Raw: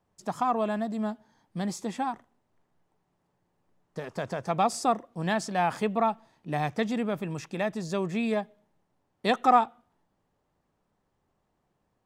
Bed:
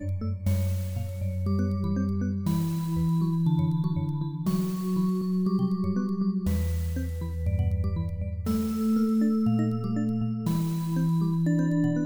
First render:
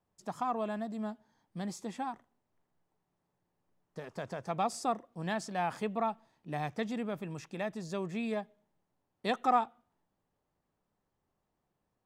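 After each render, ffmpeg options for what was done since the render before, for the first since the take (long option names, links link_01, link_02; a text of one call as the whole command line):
ffmpeg -i in.wav -af "volume=-7dB" out.wav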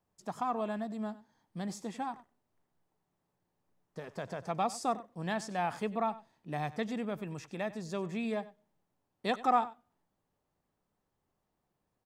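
ffmpeg -i in.wav -af "aecho=1:1:95:0.133" out.wav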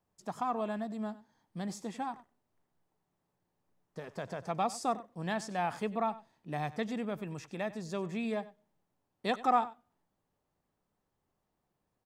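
ffmpeg -i in.wav -af anull out.wav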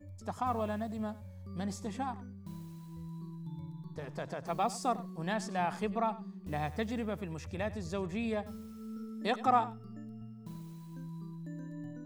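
ffmpeg -i in.wav -i bed.wav -filter_complex "[1:a]volume=-19dB[link_01];[0:a][link_01]amix=inputs=2:normalize=0" out.wav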